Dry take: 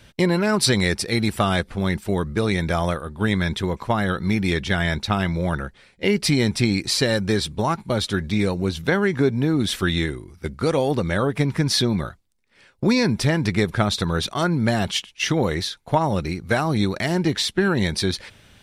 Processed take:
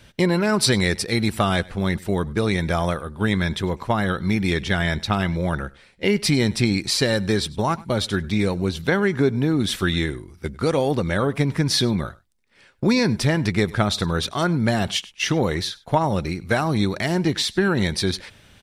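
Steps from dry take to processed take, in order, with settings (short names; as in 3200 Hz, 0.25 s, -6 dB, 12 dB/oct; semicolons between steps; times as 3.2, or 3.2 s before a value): echo 99 ms -22.5 dB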